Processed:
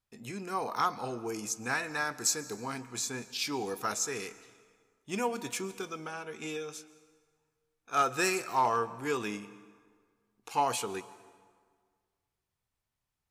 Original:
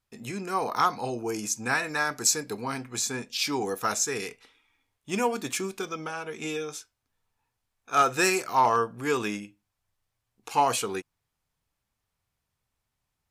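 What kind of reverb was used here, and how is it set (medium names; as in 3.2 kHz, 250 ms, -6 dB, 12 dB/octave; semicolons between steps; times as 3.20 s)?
plate-style reverb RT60 1.8 s, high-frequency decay 0.7×, pre-delay 110 ms, DRR 17 dB; trim -5.5 dB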